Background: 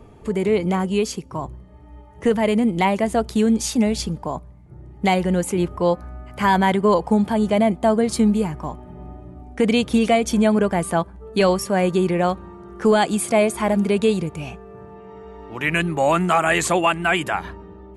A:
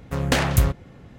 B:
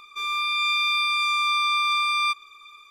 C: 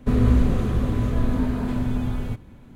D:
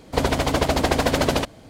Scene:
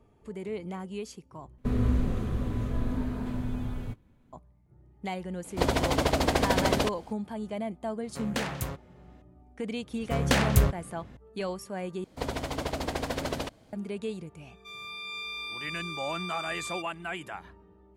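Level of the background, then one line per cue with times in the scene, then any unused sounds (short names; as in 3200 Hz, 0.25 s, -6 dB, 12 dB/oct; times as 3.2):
background -16.5 dB
1.58 replace with C -8 dB + gate -35 dBFS, range -8 dB
5.44 add D -5 dB
8.04 add A -10.5 dB + HPF 170 Hz 6 dB/oct
9.99 add A -3.5 dB
12.04 replace with D -12 dB
14.49 add B -14 dB + bell 1300 Hz -7.5 dB 0.37 oct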